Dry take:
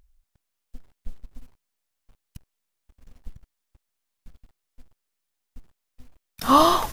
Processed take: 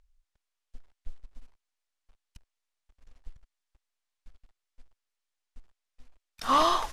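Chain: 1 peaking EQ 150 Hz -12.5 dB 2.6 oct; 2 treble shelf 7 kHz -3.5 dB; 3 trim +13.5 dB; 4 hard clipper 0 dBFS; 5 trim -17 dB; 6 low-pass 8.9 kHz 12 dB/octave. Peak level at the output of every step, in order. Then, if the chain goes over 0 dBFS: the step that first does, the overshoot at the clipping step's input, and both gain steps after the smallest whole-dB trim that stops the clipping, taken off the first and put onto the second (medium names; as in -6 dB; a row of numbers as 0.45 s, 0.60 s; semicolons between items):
-6.5 dBFS, -6.5 dBFS, +7.0 dBFS, 0.0 dBFS, -17.0 dBFS, -16.5 dBFS; step 3, 7.0 dB; step 3 +6.5 dB, step 5 -10 dB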